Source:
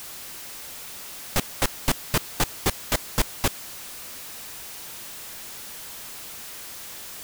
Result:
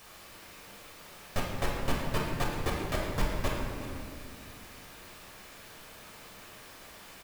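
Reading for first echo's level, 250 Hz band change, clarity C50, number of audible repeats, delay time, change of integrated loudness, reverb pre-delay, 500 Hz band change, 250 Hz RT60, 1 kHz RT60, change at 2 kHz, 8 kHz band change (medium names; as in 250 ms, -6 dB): -13.5 dB, -3.0 dB, 0.5 dB, 1, 374 ms, -4.5 dB, 4 ms, -2.0 dB, 3.3 s, 2.0 s, -5.5 dB, -15.0 dB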